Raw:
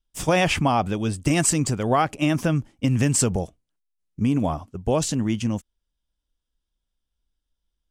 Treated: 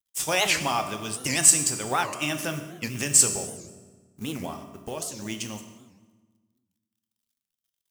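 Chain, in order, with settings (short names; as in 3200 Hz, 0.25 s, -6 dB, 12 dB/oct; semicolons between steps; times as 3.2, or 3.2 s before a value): G.711 law mismatch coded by A; tilt +3.5 dB/oct; 4.41–5.22 compressor 6:1, threshold -27 dBFS, peak gain reduction 10.5 dB; on a send at -5.5 dB: reverb RT60 1.3 s, pre-delay 3 ms; on the sum: record warp 78 rpm, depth 250 cents; gain -4.5 dB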